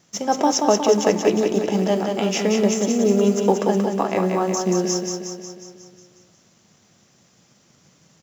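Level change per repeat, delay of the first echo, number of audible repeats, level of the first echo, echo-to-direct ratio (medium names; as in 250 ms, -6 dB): -4.5 dB, 181 ms, 7, -4.5 dB, -2.5 dB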